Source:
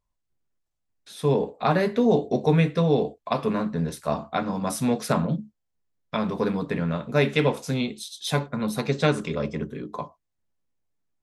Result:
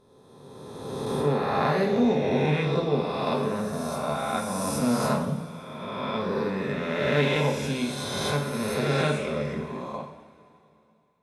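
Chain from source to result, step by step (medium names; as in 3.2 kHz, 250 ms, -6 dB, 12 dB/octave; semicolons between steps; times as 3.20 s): reverse spectral sustain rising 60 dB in 2.10 s; two-slope reverb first 0.58 s, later 2.8 s, from -15 dB, DRR 1.5 dB; 6.75–7.36 s: loudspeaker Doppler distortion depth 0.1 ms; trim -8 dB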